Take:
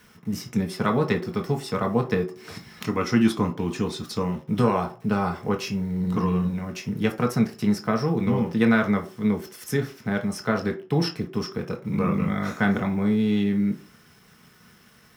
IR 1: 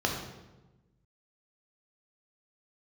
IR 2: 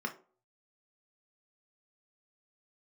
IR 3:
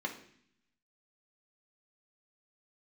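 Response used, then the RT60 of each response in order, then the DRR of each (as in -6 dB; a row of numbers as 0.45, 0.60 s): 2; 1.1 s, not exponential, 0.60 s; 0.0, 2.5, 0.5 dB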